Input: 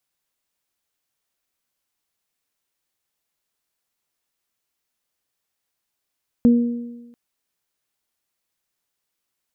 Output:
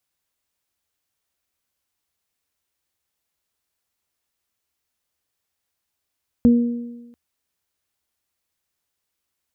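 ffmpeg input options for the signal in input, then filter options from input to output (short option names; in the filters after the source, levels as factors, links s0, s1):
-f lavfi -i "aevalsrc='0.376*pow(10,-3*t/1.12)*sin(2*PI*238*t)+0.0841*pow(10,-3*t/1.09)*sin(2*PI*476*t)':d=0.69:s=44100"
-af "equalizer=f=75:t=o:w=0.52:g=11"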